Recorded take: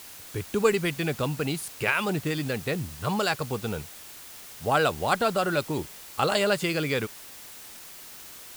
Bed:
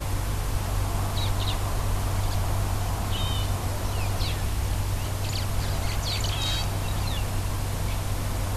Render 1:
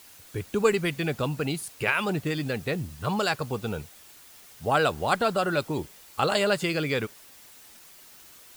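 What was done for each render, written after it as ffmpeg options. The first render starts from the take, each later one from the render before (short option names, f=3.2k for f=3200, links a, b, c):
-af "afftdn=nr=7:nf=-45"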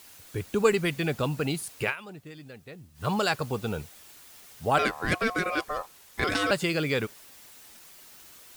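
-filter_complex "[0:a]asettb=1/sr,asplit=3[a][b][c];[a]atrim=end=4.784[d];[b]atrim=start=4.78:end=6.51,asetpts=PTS-STARTPTS,afade=t=in:d=0.004:c=qsin,afade=t=out:st=1.726:d=0.004:c=qsin,aeval=exprs='val(0)*sin(2*PI*900*n/s)':c=same[e];[c]atrim=start=6.506[f];[d][e]acrossfade=d=0.004:c1=hsin:c2=qsin[g];[g][f]acrossfade=d=0.004:c1=qsin:c2=hsin,asplit=3[h][i][j];[h]atrim=end=1.96,asetpts=PTS-STARTPTS,afade=t=out:st=1.84:d=0.12:silence=0.158489[k];[i]atrim=start=1.96:end=2.94,asetpts=PTS-STARTPTS,volume=-16dB[l];[j]atrim=start=2.94,asetpts=PTS-STARTPTS,afade=t=in:d=0.12:silence=0.158489[m];[k][l][m]concat=n=3:v=0:a=1"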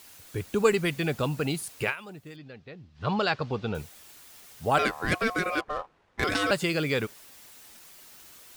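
-filter_complex "[0:a]asettb=1/sr,asplit=3[a][b][c];[a]atrim=end=2.364[d];[b]atrim=start=2.36:end=3.75,asetpts=PTS-STARTPTS,afade=t=in:d=0.004:c=qsin,afade=t=out:st=1.386:d=0.004:c=qsin,lowpass=f=4.8k:w=0.5412,lowpass=f=4.8k:w=1.3066[e];[c]atrim=start=3.746[f];[d][e]acrossfade=d=0.004:c1=hsin:c2=qsin[g];[g][f]acrossfade=d=0.004:c1=qsin:c2=hsin,asettb=1/sr,asplit=3[h][i][j];[h]atrim=end=5.584[k];[i]atrim=start=5.58:end=6.24,asetpts=PTS-STARTPTS,afade=t=in:d=0.004:c=qsin,afade=t=out:st=0.656:d=0.004:c=qsin,adynamicsmooth=sensitivity=5.5:basefreq=1.4k[l];[j]atrim=start=6.236[m];[k][l]acrossfade=d=0.004:c1=hsin:c2=qsin[n];[n][m]acrossfade=d=0.004:c1=qsin:c2=hsin"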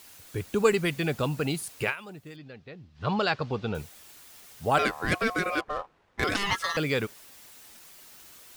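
-filter_complex "[0:a]asettb=1/sr,asplit=3[a][b][c];[a]atrim=end=6.364[d];[b]atrim=start=6.36:end=6.77,asetpts=PTS-STARTPTS,afade=t=in:d=0.004:c=qsin,afade=t=out:st=0.406:d=0.004:c=qsin,aeval=exprs='val(0)*sin(2*PI*1500*n/s)':c=same[e];[c]atrim=start=6.766[f];[d][e]acrossfade=d=0.004:c1=hsin:c2=qsin[g];[g][f]acrossfade=d=0.004:c1=qsin:c2=hsin"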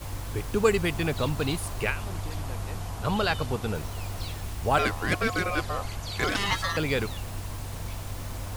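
-filter_complex "[1:a]volume=-7.5dB[a];[0:a][a]amix=inputs=2:normalize=0"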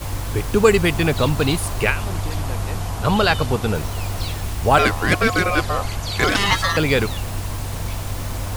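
-af "volume=9dB,alimiter=limit=-1dB:level=0:latency=1"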